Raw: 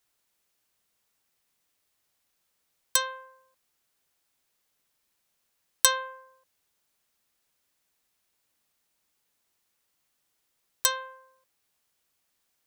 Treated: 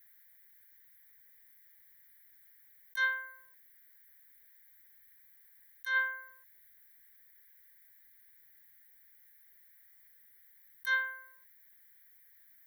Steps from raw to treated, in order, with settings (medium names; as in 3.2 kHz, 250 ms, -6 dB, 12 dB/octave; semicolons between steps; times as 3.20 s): FFT filter 100 Hz 0 dB, 560 Hz -16 dB, 960 Hz -8 dB, 1.9 kHz +10 dB, 3.3 kHz -5 dB, 5.2 kHz -13 dB, 12 kHz +11 dB; compressor with a negative ratio -32 dBFS, ratio -1; static phaser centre 1.8 kHz, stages 8